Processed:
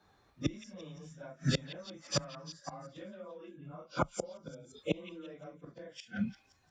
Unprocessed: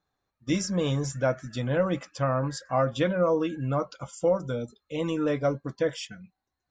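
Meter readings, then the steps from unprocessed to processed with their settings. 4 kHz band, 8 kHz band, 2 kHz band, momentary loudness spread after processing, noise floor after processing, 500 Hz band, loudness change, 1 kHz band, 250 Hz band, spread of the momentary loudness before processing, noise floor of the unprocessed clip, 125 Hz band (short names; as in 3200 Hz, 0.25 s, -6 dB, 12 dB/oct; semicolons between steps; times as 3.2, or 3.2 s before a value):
-4.0 dB, -6.0 dB, -9.5 dB, 14 LU, -69 dBFS, -16.0 dB, -12.0 dB, -12.0 dB, -10.5 dB, 9 LU, -84 dBFS, -10.5 dB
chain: phase scrambler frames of 0.1 s; high shelf 7800 Hz -10.5 dB; compressor 4:1, threshold -28 dBFS, peak gain reduction 9 dB; flipped gate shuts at -30 dBFS, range -31 dB; frequency shift +20 Hz; on a send: delay with a stepping band-pass 0.173 s, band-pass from 2700 Hz, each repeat 0.7 oct, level -9.5 dB; on the sum: gain +14 dB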